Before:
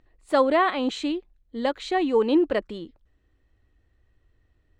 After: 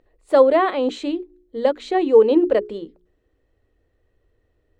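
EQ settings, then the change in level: peaking EQ 470 Hz +11.5 dB 1.1 oct; hum notches 60/120/180/240/300/360 Hz; hum notches 60/120/180/240/300/360/420 Hz; -1.5 dB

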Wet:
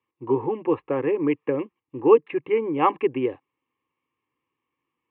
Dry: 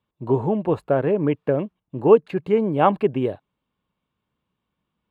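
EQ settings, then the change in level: cabinet simulation 210–2600 Hz, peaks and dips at 420 Hz -7 dB, 620 Hz -9 dB, 900 Hz -6 dB; static phaser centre 980 Hz, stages 8; +5.5 dB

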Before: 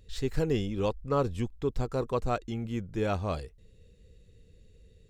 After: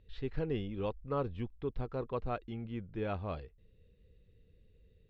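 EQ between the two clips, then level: low-pass 3.5 kHz 24 dB/octave; -7.0 dB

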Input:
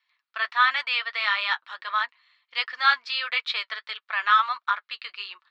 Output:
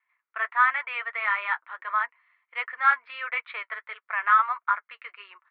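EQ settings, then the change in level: distance through air 76 m; cabinet simulation 270–2300 Hz, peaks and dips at 320 Hz +4 dB, 450 Hz +6 dB, 680 Hz +4 dB, 1 kHz +5 dB, 1.4 kHz +4 dB, 2.1 kHz +7 dB; -4.0 dB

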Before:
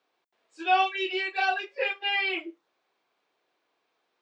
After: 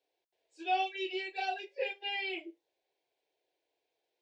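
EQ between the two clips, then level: bass shelf 430 Hz +3.5 dB; static phaser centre 510 Hz, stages 4; -6.0 dB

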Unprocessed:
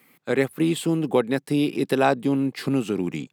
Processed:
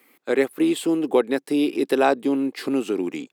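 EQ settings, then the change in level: resonant low shelf 210 Hz -13 dB, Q 1.5; 0.0 dB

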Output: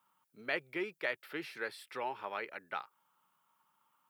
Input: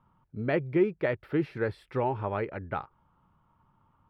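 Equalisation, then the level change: high-pass 140 Hz 24 dB/octave; differentiator; +11.0 dB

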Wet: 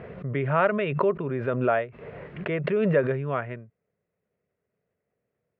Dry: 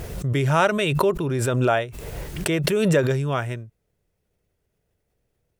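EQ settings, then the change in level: distance through air 87 m; cabinet simulation 190–2200 Hz, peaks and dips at 320 Hz -9 dB, 850 Hz -7 dB, 1.5 kHz -3 dB; 0.0 dB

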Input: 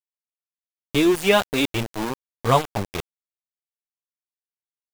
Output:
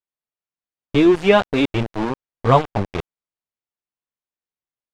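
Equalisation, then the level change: tape spacing loss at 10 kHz 23 dB; +5.5 dB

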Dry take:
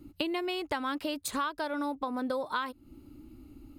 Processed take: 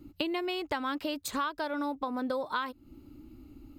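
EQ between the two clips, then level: peaking EQ 9.8 kHz -9.5 dB 0.26 oct; 0.0 dB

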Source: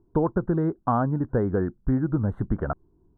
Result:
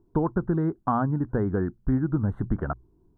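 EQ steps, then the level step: hum notches 60/120 Hz; dynamic bell 540 Hz, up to -6 dB, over -40 dBFS, Q 2.1; 0.0 dB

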